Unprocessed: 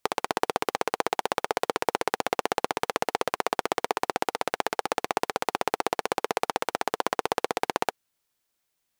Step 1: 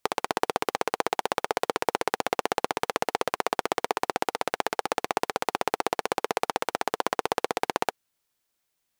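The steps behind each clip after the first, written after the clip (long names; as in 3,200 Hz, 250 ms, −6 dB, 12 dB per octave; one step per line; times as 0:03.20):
no processing that can be heard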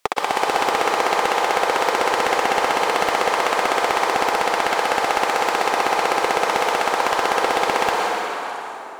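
dense smooth reverb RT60 3.4 s, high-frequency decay 0.6×, pre-delay 105 ms, DRR 3 dB
mid-hump overdrive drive 19 dB, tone 6,700 Hz, clips at −4.5 dBFS
echo through a band-pass that steps 224 ms, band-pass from 1,200 Hz, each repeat 1.4 octaves, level −7 dB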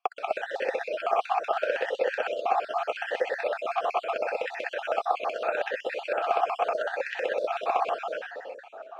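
time-frequency cells dropped at random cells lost 44%
in parallel at −4.5 dB: dead-zone distortion −40.5 dBFS
on the sum: formant filter swept between two vowels a-e 0.77 Hz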